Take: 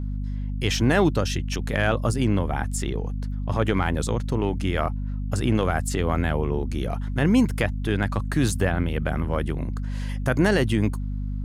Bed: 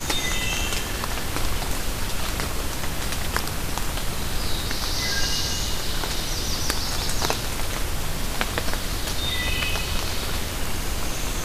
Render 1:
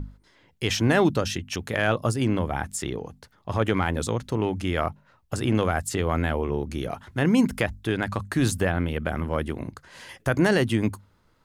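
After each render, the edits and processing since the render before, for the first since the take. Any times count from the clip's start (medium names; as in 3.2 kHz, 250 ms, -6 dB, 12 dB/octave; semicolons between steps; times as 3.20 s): hum notches 50/100/150/200/250 Hz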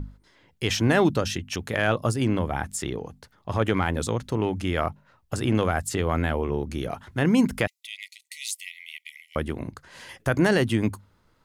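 7.67–9.36 s: brick-wall FIR high-pass 1.9 kHz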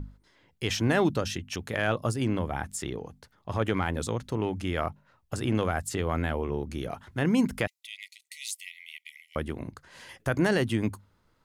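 trim -4 dB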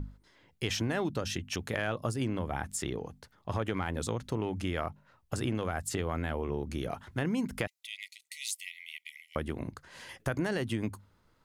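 compression, threshold -28 dBFS, peak gain reduction 9 dB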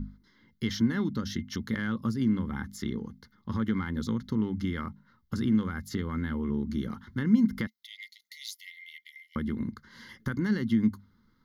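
static phaser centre 2.5 kHz, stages 6; small resonant body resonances 220/2100 Hz, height 15 dB, ringing for 75 ms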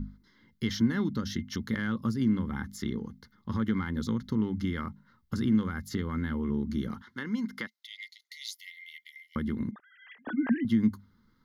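7.02–8.54 s: frequency weighting A; 9.71–10.65 s: formants replaced by sine waves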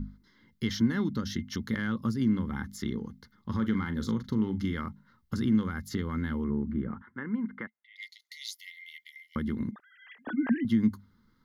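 3.54–4.75 s: doubling 41 ms -11.5 dB; 6.44–7.96 s: low-pass 1.9 kHz 24 dB/octave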